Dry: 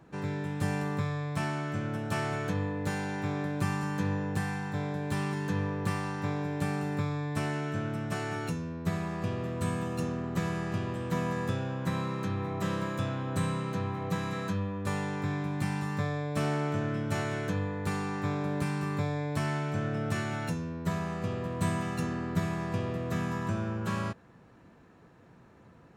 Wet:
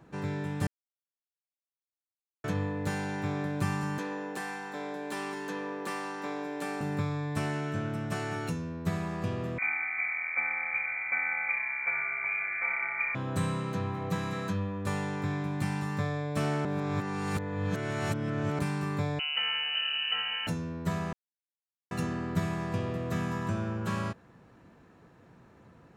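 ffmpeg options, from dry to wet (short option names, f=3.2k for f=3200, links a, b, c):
-filter_complex "[0:a]asettb=1/sr,asplit=3[a][b][c];[a]atrim=end=3.984[d];[b]atrim=start=3.98:end=6.81,asetpts=PTS-STARTPTS,afade=t=in:d=0.004:c=qsin,afade=t=out:st=2.826:d=0.004:c=qsin,highpass=f=270:w=0.5412,highpass=f=270:w=1.3066[e];[c]atrim=start=6.806[f];[d][e]acrossfade=d=0.004:c1=hsin:c2=qsin[g];[g][f]acrossfade=d=0.004:c1=qsin:c2=hsin,asettb=1/sr,asplit=3[h][i][j];[h]atrim=end=9.584[k];[i]atrim=start=9.58:end=13.15,asetpts=PTS-STARTPTS,afade=t=in:d=0.004:c=qsin,afade=t=out:st=3.566:d=0.004:c=qsin,lowpass=f=2.1k:t=q:w=0.5098,lowpass=f=2.1k:t=q:w=0.6013,lowpass=f=2.1k:t=q:w=0.9,lowpass=f=2.1k:t=q:w=2.563,afreqshift=-2500[l];[j]atrim=start=13.146[m];[k][l]acrossfade=d=0.004:c1=hsin:c2=qsin[n];[n][m]acrossfade=d=0.004:c1=qsin:c2=hsin,asettb=1/sr,asplit=3[o][p][q];[o]atrim=end=19.194[r];[p]atrim=start=19.19:end=20.47,asetpts=PTS-STARTPTS,afade=t=in:d=0.004:c=qsin,afade=t=out:st=1.276:d=0.004:c=qsin,lowpass=f=2.6k:t=q:w=0.5098,lowpass=f=2.6k:t=q:w=0.6013,lowpass=f=2.6k:t=q:w=0.9,lowpass=f=2.6k:t=q:w=2.563,afreqshift=-3100[s];[q]atrim=start=20.466[t];[r][s]acrossfade=d=0.004:c1=hsin:c2=qsin[u];[u][t]acrossfade=d=0.004:c1=qsin:c2=hsin,asplit=7[v][w][x][y][z][aa][ab];[v]atrim=end=0.67,asetpts=PTS-STARTPTS,afade=t=out:st=0.666:d=0.004:c=hsin[ac];[w]atrim=start=0.67:end=2.44,asetpts=PTS-STARTPTS,volume=0[ad];[x]atrim=start=2.44:end=16.652,asetpts=PTS-STARTPTS,afade=t=in:d=0.004:c=hsin[ae];[y]atrim=start=16.648:end=18.592,asetpts=PTS-STARTPTS,areverse[af];[z]atrim=start=18.588:end=21.13,asetpts=PTS-STARTPTS,afade=t=out:st=2.538:d=0.004:c=hsin[ag];[aa]atrim=start=21.13:end=21.91,asetpts=PTS-STARTPTS,volume=0[ah];[ab]atrim=start=21.91,asetpts=PTS-STARTPTS,afade=t=in:d=0.004:c=hsin[ai];[ac][ad][ae]concat=n=3:v=0:a=1[aj];[aj][af]acrossfade=d=0.004:c1=hsin:c2=hsin[ak];[ag][ah][ai]concat=n=3:v=0:a=1[al];[ak][al]acrossfade=d=0.004:c1=hsin:c2=hsin"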